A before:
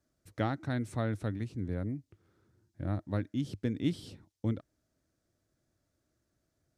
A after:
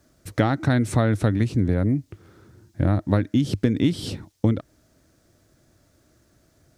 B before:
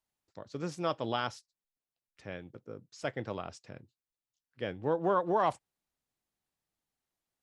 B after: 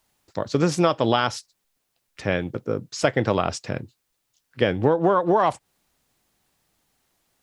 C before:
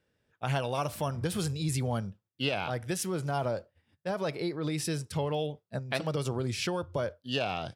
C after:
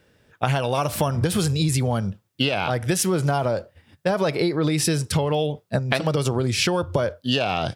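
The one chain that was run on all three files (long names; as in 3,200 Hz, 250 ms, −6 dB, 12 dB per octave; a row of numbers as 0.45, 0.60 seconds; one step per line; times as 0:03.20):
downward compressor 12 to 1, threshold −34 dBFS
loudness normalisation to −23 LKFS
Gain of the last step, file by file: +18.5, +19.5, +16.0 decibels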